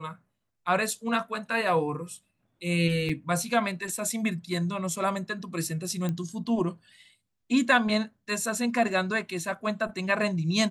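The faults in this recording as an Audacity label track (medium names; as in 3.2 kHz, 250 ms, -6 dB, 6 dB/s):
3.090000	3.090000	dropout 4.7 ms
6.090000	6.090000	pop -18 dBFS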